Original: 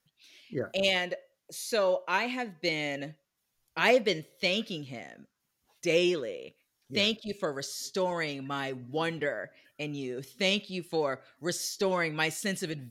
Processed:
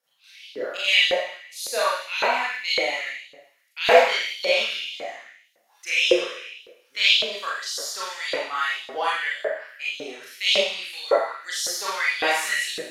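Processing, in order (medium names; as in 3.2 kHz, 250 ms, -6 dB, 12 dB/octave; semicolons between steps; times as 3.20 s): Schroeder reverb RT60 0.88 s, combs from 28 ms, DRR -9.5 dB; LFO high-pass saw up 1.8 Hz 480–3800 Hz; trim -3 dB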